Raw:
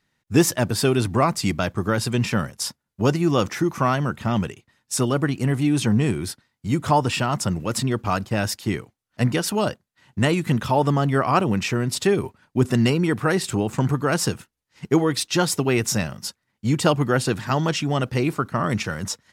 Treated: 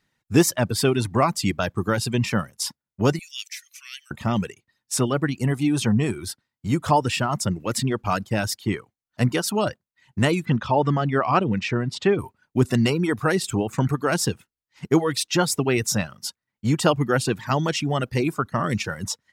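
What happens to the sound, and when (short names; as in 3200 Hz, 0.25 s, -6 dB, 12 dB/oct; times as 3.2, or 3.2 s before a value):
3.19–4.11 steep high-pass 2300 Hz
10.45–12.19 LPF 4100 Hz
whole clip: reverb removal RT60 0.72 s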